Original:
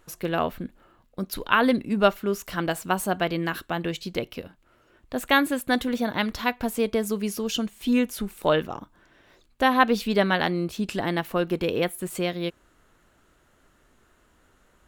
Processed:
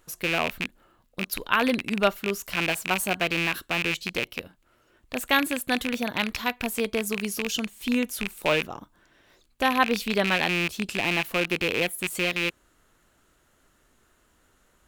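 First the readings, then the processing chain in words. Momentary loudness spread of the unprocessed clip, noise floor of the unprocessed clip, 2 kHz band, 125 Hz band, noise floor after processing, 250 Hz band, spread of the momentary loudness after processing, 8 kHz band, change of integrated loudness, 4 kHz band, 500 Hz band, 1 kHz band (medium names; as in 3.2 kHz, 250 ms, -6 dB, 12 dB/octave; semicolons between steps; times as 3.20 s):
12 LU, -62 dBFS, +2.5 dB, -3.5 dB, -65 dBFS, -3.5 dB, 8 LU, +3.0 dB, -0.5 dB, +3.0 dB, -3.5 dB, -3.0 dB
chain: rattle on loud lows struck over -36 dBFS, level -13 dBFS; treble shelf 3.8 kHz +7 dB; trim -3.5 dB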